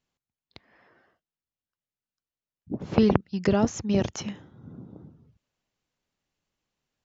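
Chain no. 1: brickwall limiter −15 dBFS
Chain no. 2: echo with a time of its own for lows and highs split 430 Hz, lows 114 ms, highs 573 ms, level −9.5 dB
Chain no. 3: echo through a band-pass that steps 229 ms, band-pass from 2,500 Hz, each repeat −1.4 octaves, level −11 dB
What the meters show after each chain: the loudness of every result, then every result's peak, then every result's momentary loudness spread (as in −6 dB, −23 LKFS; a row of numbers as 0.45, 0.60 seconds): −28.5, −26.0, −26.0 LKFS; −15.0, −5.0, −4.5 dBFS; 20, 22, 21 LU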